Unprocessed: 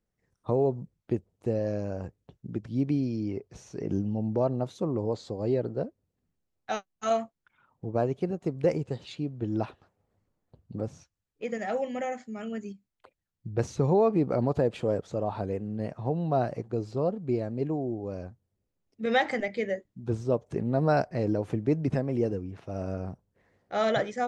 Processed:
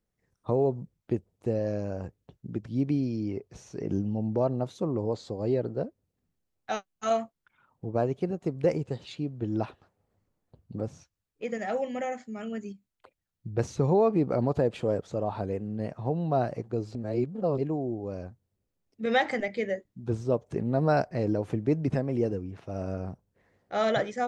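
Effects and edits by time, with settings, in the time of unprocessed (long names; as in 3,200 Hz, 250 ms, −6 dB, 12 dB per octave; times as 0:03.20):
0:16.95–0:17.58: reverse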